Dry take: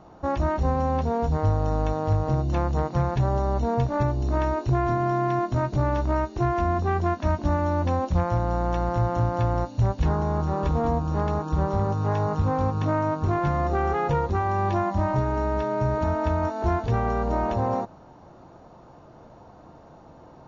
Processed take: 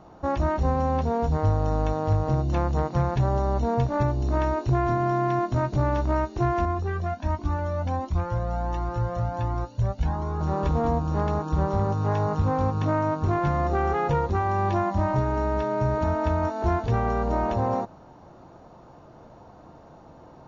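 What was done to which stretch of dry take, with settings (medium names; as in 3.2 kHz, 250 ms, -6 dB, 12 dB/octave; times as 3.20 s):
6.65–10.41 s: Shepard-style flanger rising 1.4 Hz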